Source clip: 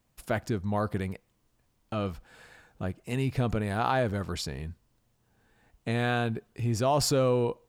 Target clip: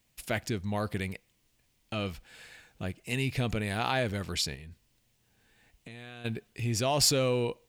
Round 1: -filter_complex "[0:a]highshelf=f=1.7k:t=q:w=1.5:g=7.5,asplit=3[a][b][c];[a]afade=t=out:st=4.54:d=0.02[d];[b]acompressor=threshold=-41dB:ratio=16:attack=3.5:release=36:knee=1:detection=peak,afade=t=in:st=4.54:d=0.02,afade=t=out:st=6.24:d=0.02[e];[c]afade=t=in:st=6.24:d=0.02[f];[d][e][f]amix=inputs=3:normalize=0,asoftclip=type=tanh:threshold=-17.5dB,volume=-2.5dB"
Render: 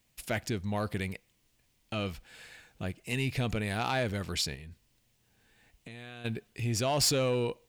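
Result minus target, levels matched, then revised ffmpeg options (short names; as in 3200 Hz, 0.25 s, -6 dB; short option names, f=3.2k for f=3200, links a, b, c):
soft clip: distortion +14 dB
-filter_complex "[0:a]highshelf=f=1.7k:t=q:w=1.5:g=7.5,asplit=3[a][b][c];[a]afade=t=out:st=4.54:d=0.02[d];[b]acompressor=threshold=-41dB:ratio=16:attack=3.5:release=36:knee=1:detection=peak,afade=t=in:st=4.54:d=0.02,afade=t=out:st=6.24:d=0.02[e];[c]afade=t=in:st=6.24:d=0.02[f];[d][e][f]amix=inputs=3:normalize=0,asoftclip=type=tanh:threshold=-8dB,volume=-2.5dB"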